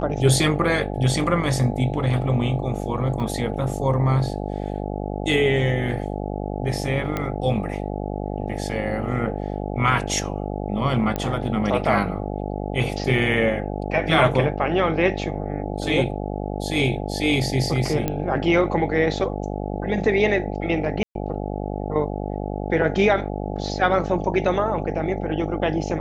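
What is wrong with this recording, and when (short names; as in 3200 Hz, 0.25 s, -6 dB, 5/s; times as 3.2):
buzz 50 Hz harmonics 17 -28 dBFS
3.2 gap 3 ms
7.17 pop -12 dBFS
11.16 pop -12 dBFS
18.08 pop -10 dBFS
21.03–21.15 gap 0.122 s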